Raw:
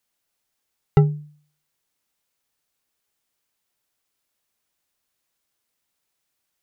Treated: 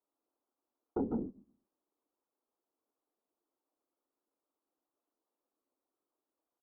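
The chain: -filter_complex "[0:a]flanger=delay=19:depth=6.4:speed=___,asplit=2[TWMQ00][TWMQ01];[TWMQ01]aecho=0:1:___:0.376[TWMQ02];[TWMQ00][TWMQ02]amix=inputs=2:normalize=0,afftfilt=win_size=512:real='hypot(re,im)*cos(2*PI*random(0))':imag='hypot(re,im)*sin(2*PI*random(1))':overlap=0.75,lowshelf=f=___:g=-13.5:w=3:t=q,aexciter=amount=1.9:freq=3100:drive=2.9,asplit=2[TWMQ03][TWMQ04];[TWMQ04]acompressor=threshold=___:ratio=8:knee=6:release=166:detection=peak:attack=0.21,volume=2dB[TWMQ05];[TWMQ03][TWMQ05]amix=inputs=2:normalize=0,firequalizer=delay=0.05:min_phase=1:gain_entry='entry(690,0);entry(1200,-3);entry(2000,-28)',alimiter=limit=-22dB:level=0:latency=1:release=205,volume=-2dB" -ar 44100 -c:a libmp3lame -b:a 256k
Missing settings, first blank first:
2.8, 147, 200, -33dB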